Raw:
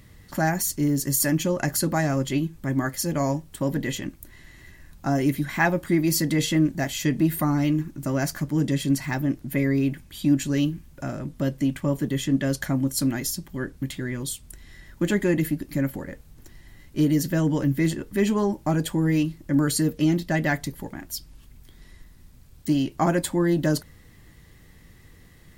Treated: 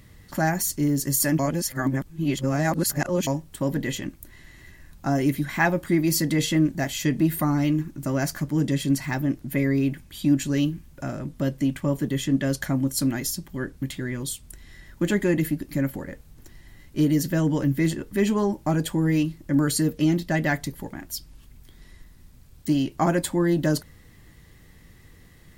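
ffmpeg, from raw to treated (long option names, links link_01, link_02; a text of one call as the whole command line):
ffmpeg -i in.wav -filter_complex "[0:a]asplit=3[link_01][link_02][link_03];[link_01]atrim=end=1.392[link_04];[link_02]atrim=start=1.388:end=3.272,asetpts=PTS-STARTPTS,areverse[link_05];[link_03]atrim=start=3.268[link_06];[link_04][link_05]acrossfade=duration=0.004:curve1=hsin:curve2=hsin[link_07];[link_07][link_06]acrossfade=duration=0.004:curve1=hsin:curve2=hsin" out.wav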